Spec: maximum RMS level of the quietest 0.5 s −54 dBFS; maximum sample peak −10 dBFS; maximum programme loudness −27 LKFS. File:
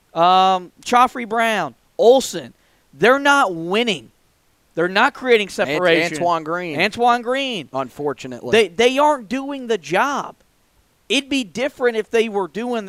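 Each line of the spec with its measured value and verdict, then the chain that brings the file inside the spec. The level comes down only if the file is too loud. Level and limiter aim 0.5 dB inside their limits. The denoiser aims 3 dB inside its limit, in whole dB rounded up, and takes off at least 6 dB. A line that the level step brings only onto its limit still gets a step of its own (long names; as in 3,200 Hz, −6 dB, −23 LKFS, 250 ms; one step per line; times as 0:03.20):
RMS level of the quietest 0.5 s −60 dBFS: in spec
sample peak −2.0 dBFS: out of spec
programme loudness −18.0 LKFS: out of spec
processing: level −9.5 dB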